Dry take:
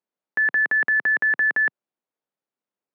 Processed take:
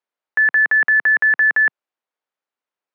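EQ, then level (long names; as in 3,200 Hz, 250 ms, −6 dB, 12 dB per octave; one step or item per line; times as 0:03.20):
resonant band-pass 1,700 Hz, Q 0.55
+5.5 dB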